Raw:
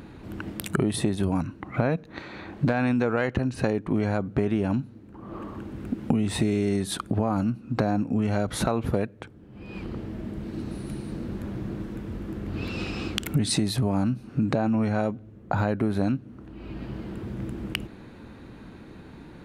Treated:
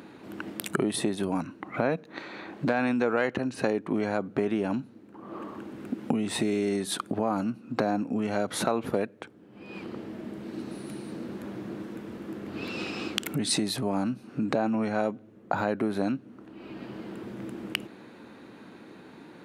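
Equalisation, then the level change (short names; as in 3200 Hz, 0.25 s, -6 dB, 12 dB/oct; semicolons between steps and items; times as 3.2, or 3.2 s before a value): HPF 240 Hz 12 dB/oct; 0.0 dB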